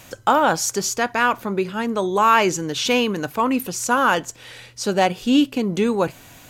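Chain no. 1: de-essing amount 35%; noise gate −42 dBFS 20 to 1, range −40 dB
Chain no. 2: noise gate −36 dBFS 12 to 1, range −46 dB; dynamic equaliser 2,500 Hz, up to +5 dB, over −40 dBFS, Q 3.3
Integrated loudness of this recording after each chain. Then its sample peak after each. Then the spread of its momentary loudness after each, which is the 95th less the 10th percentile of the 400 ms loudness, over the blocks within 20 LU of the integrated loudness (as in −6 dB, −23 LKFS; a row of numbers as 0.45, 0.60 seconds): −20.0, −19.5 LKFS; −4.0, −2.5 dBFS; 7, 7 LU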